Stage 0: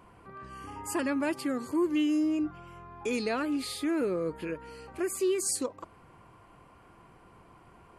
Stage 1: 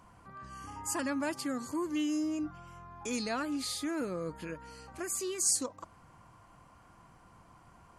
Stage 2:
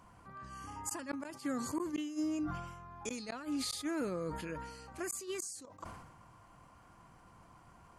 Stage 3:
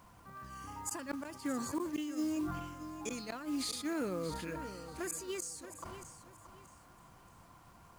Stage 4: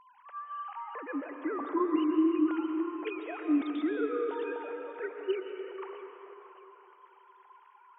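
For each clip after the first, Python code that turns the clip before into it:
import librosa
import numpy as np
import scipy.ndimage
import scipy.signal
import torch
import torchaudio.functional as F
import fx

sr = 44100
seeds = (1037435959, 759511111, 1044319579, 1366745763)

y1 = fx.graphic_eq_15(x, sr, hz=(400, 2500, 6300), db=(-10, -5, 8))
y1 = y1 * 10.0 ** (-1.0 / 20.0)
y2 = fx.gate_flip(y1, sr, shuts_db=-25.0, range_db=-33)
y2 = fx.sustainer(y2, sr, db_per_s=49.0)
y2 = y2 * 10.0 ** (-1.5 / 20.0)
y3 = fx.quant_companded(y2, sr, bits=6)
y3 = fx.echo_feedback(y3, sr, ms=628, feedback_pct=28, wet_db=-12.0)
y4 = fx.sine_speech(y3, sr)
y4 = fx.rev_plate(y4, sr, seeds[0], rt60_s=3.2, hf_ratio=0.7, predelay_ms=110, drr_db=4.0)
y4 = y4 * 10.0 ** (6.0 / 20.0)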